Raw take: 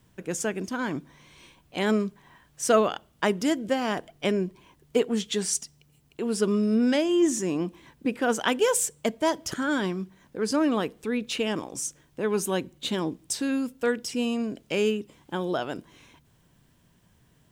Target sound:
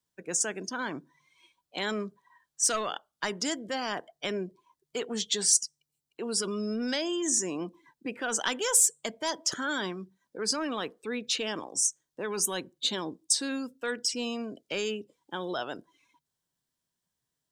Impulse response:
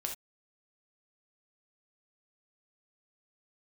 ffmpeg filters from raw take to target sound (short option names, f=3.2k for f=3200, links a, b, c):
-filter_complex "[0:a]asplit=2[a][b];[b]highpass=f=720:p=1,volume=12dB,asoftclip=type=tanh:threshold=-7dB[c];[a][c]amix=inputs=2:normalize=0,lowpass=f=3k:p=1,volume=-6dB,acrossover=split=140|1100[d][e][f];[e]alimiter=limit=-20.5dB:level=0:latency=1:release=18[g];[d][g][f]amix=inputs=3:normalize=0,afftdn=nr=21:nf=-42,aexciter=amount=4:drive=6.2:freq=3.8k,volume=-7dB"